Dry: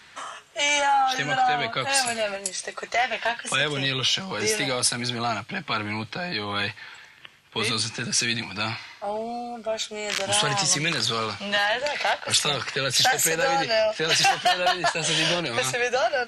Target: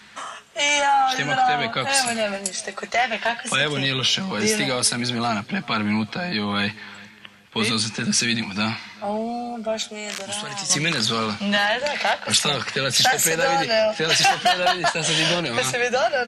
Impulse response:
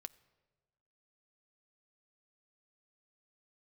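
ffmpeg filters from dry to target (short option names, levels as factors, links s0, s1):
-filter_complex "[0:a]equalizer=f=210:t=o:w=0.25:g=11.5,asettb=1/sr,asplit=3[s0][s1][s2];[s0]atrim=end=9.824[s3];[s1]atrim=start=9.82:end=10.7,asetpts=PTS-STARTPTS,afade=t=in:d=0.004:c=qsin,afade=t=out:st=0.876:d=0.004:c=qsin,acrossover=split=420|1500|6600[s4][s5][s6][s7];[s4]acompressor=threshold=0.00708:ratio=4[s8];[s5]acompressor=threshold=0.0112:ratio=4[s9];[s6]acompressor=threshold=0.0178:ratio=4[s10];[s7]acompressor=threshold=0.0158:ratio=4[s11];[s8][s9][s10][s11]amix=inputs=4:normalize=0[s12];[s2]atrim=start=10.696[s13];[s3][s12]acrossfade=d=0.004:c1=hsin:c2=qsin[s14];[s14][s13]acrossfade=d=0.004:c1=qsin:c2=hsin,asplit=2[s15][s16];[s16]adelay=388,lowpass=f=2800:p=1,volume=0.0794,asplit=2[s17][s18];[s18]adelay=388,lowpass=f=2800:p=1,volume=0.38,asplit=2[s19][s20];[s20]adelay=388,lowpass=f=2800:p=1,volume=0.38[s21];[s17][s19][s21]amix=inputs=3:normalize=0[s22];[s15][s22]amix=inputs=2:normalize=0,volume=1.33"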